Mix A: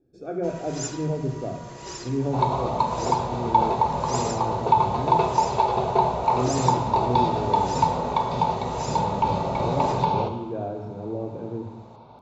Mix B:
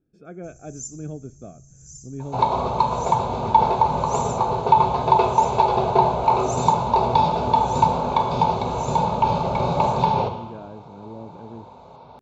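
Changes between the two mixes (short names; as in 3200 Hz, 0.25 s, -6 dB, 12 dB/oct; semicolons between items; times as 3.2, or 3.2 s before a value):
speech: send off; first sound: add Chebyshev band-stop 170–6000 Hz, order 5; second sound +3.5 dB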